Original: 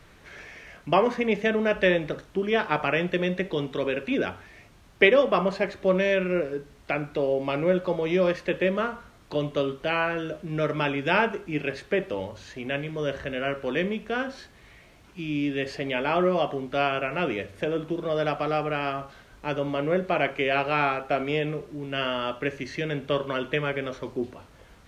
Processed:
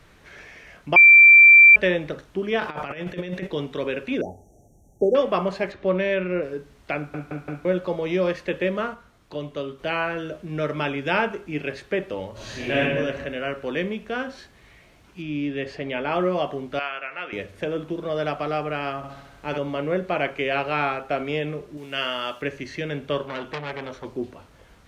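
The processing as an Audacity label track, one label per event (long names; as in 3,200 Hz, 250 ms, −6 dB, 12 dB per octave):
0.960000	1.760000	beep over 2,350 Hz −6.5 dBFS
2.600000	3.470000	compressor whose output falls as the input rises −29 dBFS, ratio −0.5
4.210000	5.150000	linear-phase brick-wall band-stop 870–5,600 Hz
5.720000	6.430000	low-pass filter 3,800 Hz
6.970000	6.970000	stutter in place 0.17 s, 4 plays
8.940000	9.790000	clip gain −4.5 dB
12.320000	12.800000	thrown reverb, RT60 1.4 s, DRR −9.5 dB
15.220000	16.120000	high-shelf EQ 5,500 Hz −10.5 dB
16.790000	17.330000	resonant band-pass 1,900 Hz, Q 1.1
18.970000	19.580000	flutter between parallel walls apart 11.2 metres, dies away in 0.91 s
21.770000	22.420000	spectral tilt +2.5 dB per octave
23.230000	24.050000	saturating transformer saturates under 2,000 Hz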